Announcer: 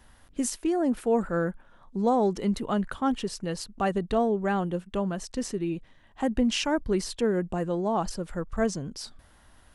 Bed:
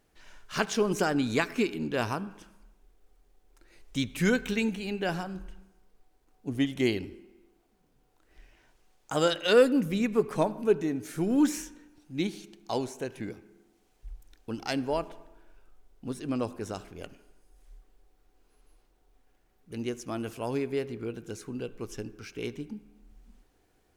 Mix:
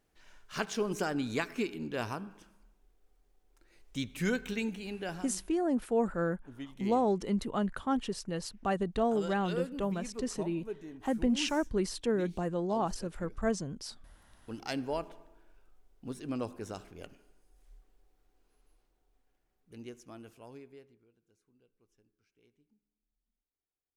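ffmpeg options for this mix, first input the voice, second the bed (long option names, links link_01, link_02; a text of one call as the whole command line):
ffmpeg -i stem1.wav -i stem2.wav -filter_complex "[0:a]adelay=4850,volume=-4.5dB[link_01];[1:a]volume=5.5dB,afade=type=out:start_time=4.84:duration=0.77:silence=0.298538,afade=type=in:start_time=14.17:duration=0.46:silence=0.266073,afade=type=out:start_time=18.13:duration=2.93:silence=0.0375837[link_02];[link_01][link_02]amix=inputs=2:normalize=0" out.wav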